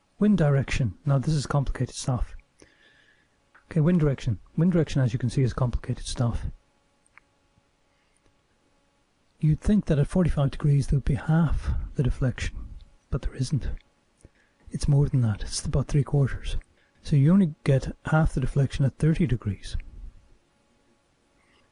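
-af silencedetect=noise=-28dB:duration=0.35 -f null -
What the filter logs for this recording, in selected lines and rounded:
silence_start: 2.23
silence_end: 3.71 | silence_duration: 1.48
silence_start: 6.49
silence_end: 9.43 | silence_duration: 2.95
silence_start: 12.57
silence_end: 13.13 | silence_duration: 0.55
silence_start: 13.75
silence_end: 14.74 | silence_duration: 1.00
silence_start: 16.59
silence_end: 17.07 | silence_duration: 0.48
silence_start: 19.80
silence_end: 21.72 | silence_duration: 1.91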